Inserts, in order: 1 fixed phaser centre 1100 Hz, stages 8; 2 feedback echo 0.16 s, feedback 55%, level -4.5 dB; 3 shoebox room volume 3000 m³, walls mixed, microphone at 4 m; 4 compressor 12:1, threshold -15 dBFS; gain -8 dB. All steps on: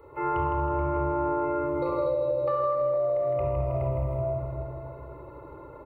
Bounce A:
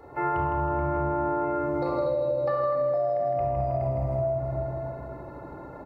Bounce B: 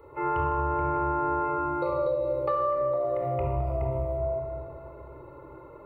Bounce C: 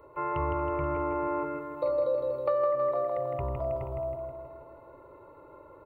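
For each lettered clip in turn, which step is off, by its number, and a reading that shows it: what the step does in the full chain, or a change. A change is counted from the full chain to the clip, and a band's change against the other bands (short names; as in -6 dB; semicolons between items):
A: 1, momentary loudness spread change -5 LU; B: 2, momentary loudness spread change +2 LU; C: 3, momentary loudness spread change -7 LU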